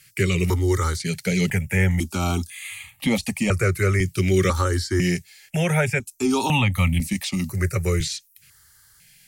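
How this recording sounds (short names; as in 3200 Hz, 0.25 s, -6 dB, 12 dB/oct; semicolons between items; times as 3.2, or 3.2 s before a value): notches that jump at a steady rate 2 Hz 230–1500 Hz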